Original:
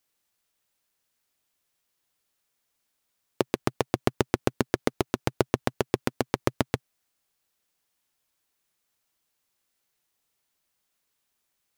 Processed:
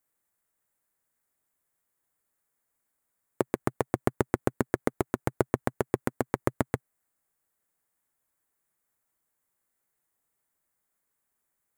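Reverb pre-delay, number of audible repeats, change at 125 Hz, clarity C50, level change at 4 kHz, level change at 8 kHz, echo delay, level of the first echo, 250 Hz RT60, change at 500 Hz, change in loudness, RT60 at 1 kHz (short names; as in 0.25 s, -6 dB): none, none, -1.5 dB, none, -13.0 dB, -4.5 dB, none, none, none, -1.5 dB, -2.0 dB, none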